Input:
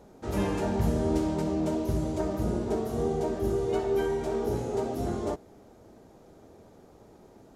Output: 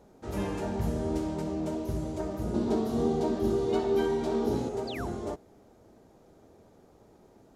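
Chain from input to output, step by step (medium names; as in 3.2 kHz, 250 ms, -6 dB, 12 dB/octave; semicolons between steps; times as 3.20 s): 2.54–4.69 s: graphic EQ 250/1000/4000 Hz +10/+5/+9 dB; 4.87–5.09 s: painted sound fall 660–5100 Hz -38 dBFS; trim -4 dB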